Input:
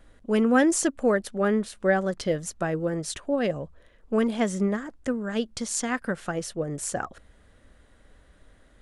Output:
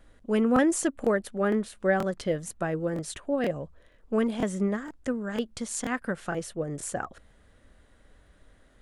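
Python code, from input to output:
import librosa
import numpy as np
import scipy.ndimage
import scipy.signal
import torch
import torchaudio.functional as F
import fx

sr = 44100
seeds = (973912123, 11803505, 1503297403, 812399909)

y = fx.dynamic_eq(x, sr, hz=5300.0, q=1.5, threshold_db=-48.0, ratio=4.0, max_db=-6)
y = fx.buffer_crackle(y, sr, first_s=0.54, period_s=0.48, block=1024, kind='repeat')
y = y * librosa.db_to_amplitude(-2.0)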